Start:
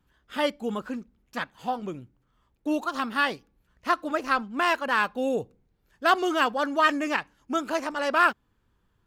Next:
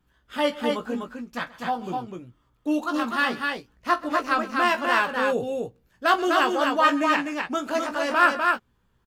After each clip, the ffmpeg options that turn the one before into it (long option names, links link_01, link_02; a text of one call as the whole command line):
ffmpeg -i in.wav -filter_complex "[0:a]asplit=2[link_01][link_02];[link_02]adelay=17,volume=-6.5dB[link_03];[link_01][link_03]amix=inputs=2:normalize=0,asplit=2[link_04][link_05];[link_05]aecho=0:1:43|131|251:0.133|0.106|0.668[link_06];[link_04][link_06]amix=inputs=2:normalize=0" out.wav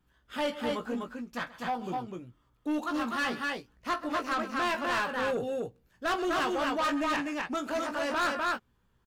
ffmpeg -i in.wav -af "asoftclip=type=tanh:threshold=-22dB,volume=-3dB" out.wav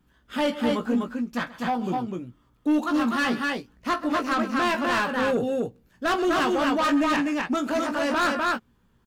ffmpeg -i in.wav -af "equalizer=frequency=230:width=1.4:gain=6.5,volume=5dB" out.wav